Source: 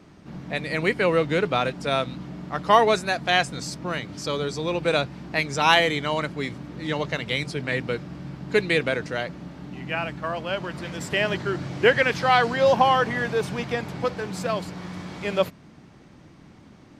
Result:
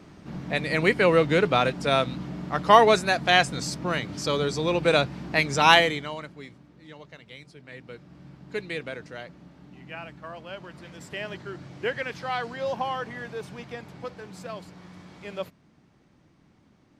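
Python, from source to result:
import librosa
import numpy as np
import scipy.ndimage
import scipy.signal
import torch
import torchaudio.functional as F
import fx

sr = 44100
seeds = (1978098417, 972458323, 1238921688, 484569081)

y = fx.gain(x, sr, db=fx.line((5.75, 1.5), (6.18, -11.0), (6.94, -19.0), (7.62, -19.0), (8.23, -11.0)))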